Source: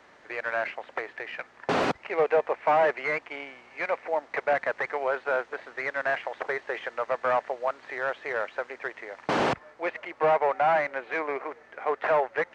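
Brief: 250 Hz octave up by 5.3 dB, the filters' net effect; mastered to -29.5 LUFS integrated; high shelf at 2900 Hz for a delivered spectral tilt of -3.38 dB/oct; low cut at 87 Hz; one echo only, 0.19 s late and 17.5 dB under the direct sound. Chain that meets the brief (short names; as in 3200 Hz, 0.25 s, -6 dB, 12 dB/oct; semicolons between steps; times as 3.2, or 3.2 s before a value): HPF 87 Hz; bell 250 Hz +7 dB; high shelf 2900 Hz -4.5 dB; echo 0.19 s -17.5 dB; gain -1.5 dB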